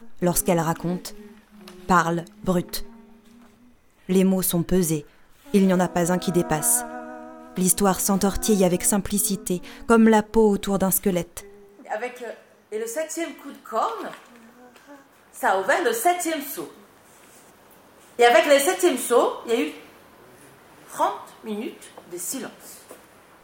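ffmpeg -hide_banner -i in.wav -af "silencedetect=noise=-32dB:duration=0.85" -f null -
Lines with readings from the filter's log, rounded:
silence_start: 2.85
silence_end: 4.09 | silence_duration: 1.24
silence_start: 14.16
silence_end: 15.37 | silence_duration: 1.22
silence_start: 16.67
silence_end: 18.19 | silence_duration: 1.52
silence_start: 19.78
silence_end: 20.90 | silence_duration: 1.13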